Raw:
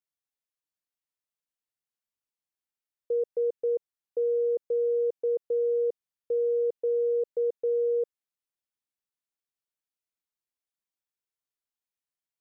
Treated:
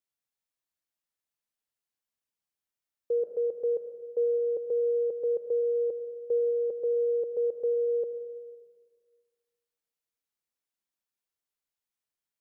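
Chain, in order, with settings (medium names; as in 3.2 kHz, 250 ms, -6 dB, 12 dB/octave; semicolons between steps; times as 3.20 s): on a send at -5.5 dB: dynamic bell 460 Hz, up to -6 dB, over -40 dBFS, Q 1.5 + reverberation RT60 1.7 s, pre-delay 68 ms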